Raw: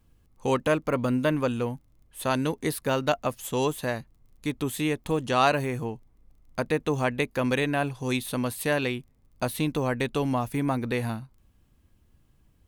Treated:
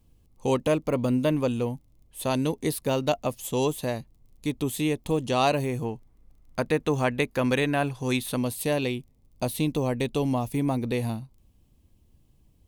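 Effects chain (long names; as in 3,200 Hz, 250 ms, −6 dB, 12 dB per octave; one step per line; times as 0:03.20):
parametric band 1,500 Hz −10.5 dB 0.91 octaves, from 0:05.84 −2 dB, from 0:08.36 −12.5 dB
level +1.5 dB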